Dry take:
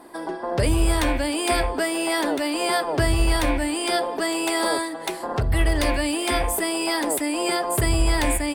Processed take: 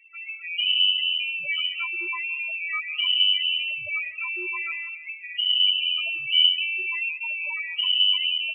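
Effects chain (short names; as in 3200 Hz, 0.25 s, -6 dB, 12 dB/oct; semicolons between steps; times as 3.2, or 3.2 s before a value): 6.27–7.12 tilt -2 dB/oct; loudest bins only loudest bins 4; digital reverb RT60 0.77 s, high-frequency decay 0.55×, pre-delay 0.115 s, DRR 16 dB; inverted band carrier 3000 Hz; gain -3 dB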